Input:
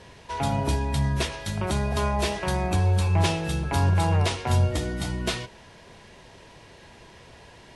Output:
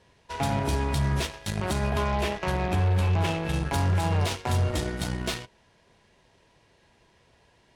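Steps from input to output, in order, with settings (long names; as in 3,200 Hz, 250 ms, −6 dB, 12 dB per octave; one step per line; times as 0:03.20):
0:01.90–0:03.54: flat-topped bell 6,400 Hz −9.5 dB
brickwall limiter −17 dBFS, peak gain reduction 5 dB
harmonic generator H 7 −19 dB, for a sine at −17 dBFS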